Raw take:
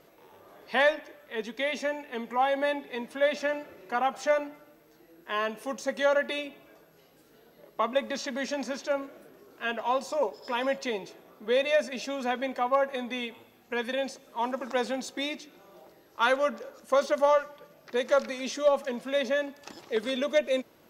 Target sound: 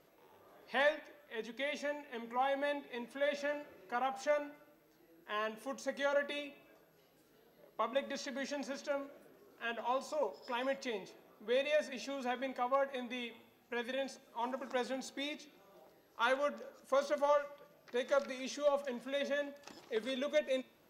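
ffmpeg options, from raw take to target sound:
ffmpeg -i in.wav -af "bandreject=frequency=113.8:width_type=h:width=4,bandreject=frequency=227.6:width_type=h:width=4,bandreject=frequency=341.4:width_type=h:width=4,bandreject=frequency=455.2:width_type=h:width=4,bandreject=frequency=569:width_type=h:width=4,bandreject=frequency=682.8:width_type=h:width=4,bandreject=frequency=796.6:width_type=h:width=4,bandreject=frequency=910.4:width_type=h:width=4,bandreject=frequency=1024.2:width_type=h:width=4,bandreject=frequency=1138:width_type=h:width=4,bandreject=frequency=1251.8:width_type=h:width=4,bandreject=frequency=1365.6:width_type=h:width=4,bandreject=frequency=1479.4:width_type=h:width=4,bandreject=frequency=1593.2:width_type=h:width=4,bandreject=frequency=1707:width_type=h:width=4,bandreject=frequency=1820.8:width_type=h:width=4,bandreject=frequency=1934.6:width_type=h:width=4,bandreject=frequency=2048.4:width_type=h:width=4,bandreject=frequency=2162.2:width_type=h:width=4,bandreject=frequency=2276:width_type=h:width=4,bandreject=frequency=2389.8:width_type=h:width=4,bandreject=frequency=2503.6:width_type=h:width=4,bandreject=frequency=2617.4:width_type=h:width=4,bandreject=frequency=2731.2:width_type=h:width=4,bandreject=frequency=2845:width_type=h:width=4,bandreject=frequency=2958.8:width_type=h:width=4,bandreject=frequency=3072.6:width_type=h:width=4,bandreject=frequency=3186.4:width_type=h:width=4,bandreject=frequency=3300.2:width_type=h:width=4,bandreject=frequency=3414:width_type=h:width=4,bandreject=frequency=3527.8:width_type=h:width=4,bandreject=frequency=3641.6:width_type=h:width=4,bandreject=frequency=3755.4:width_type=h:width=4,bandreject=frequency=3869.2:width_type=h:width=4,bandreject=frequency=3983:width_type=h:width=4,bandreject=frequency=4096.8:width_type=h:width=4,bandreject=frequency=4210.6:width_type=h:width=4,bandreject=frequency=4324.4:width_type=h:width=4,bandreject=frequency=4438.2:width_type=h:width=4,bandreject=frequency=4552:width_type=h:width=4,volume=-8dB" out.wav

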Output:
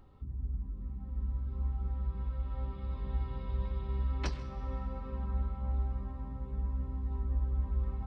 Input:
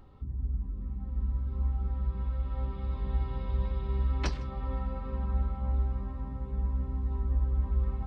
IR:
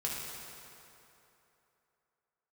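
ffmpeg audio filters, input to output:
-filter_complex "[0:a]asplit=2[link_01][link_02];[1:a]atrim=start_sample=2205,adelay=134[link_03];[link_02][link_03]afir=irnorm=-1:irlink=0,volume=-21dB[link_04];[link_01][link_04]amix=inputs=2:normalize=0,volume=-4dB"

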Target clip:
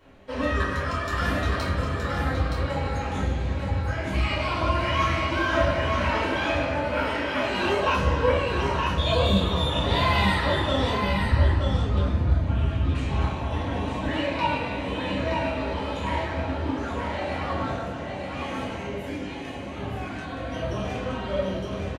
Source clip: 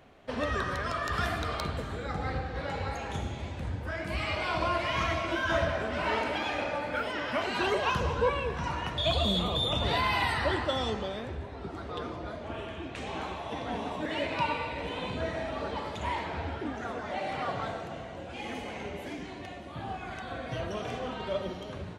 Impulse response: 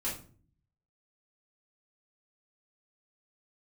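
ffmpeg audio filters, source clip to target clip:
-filter_complex "[0:a]asplit=3[link_01][link_02][link_03];[link_01]afade=type=out:start_time=11.06:duration=0.02[link_04];[link_02]asubboost=boost=6:cutoff=150,afade=type=in:start_time=11.06:duration=0.02,afade=type=out:start_time=13.13:duration=0.02[link_05];[link_03]afade=type=in:start_time=13.13:duration=0.02[link_06];[link_04][link_05][link_06]amix=inputs=3:normalize=0,aecho=1:1:920:0.562[link_07];[1:a]atrim=start_sample=2205[link_08];[link_07][link_08]afir=irnorm=-1:irlink=0"

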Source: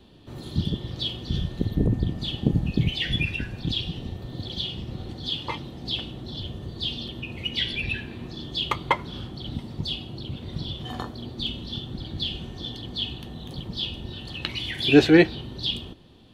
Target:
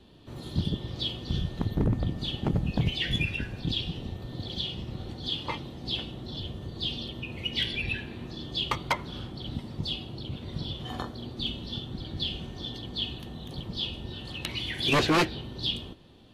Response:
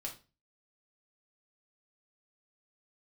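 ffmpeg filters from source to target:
-af "aeval=exprs='0.188*(abs(mod(val(0)/0.188+3,4)-2)-1)':channel_layout=same,volume=-2.5dB" -ar 32000 -c:a aac -b:a 48k

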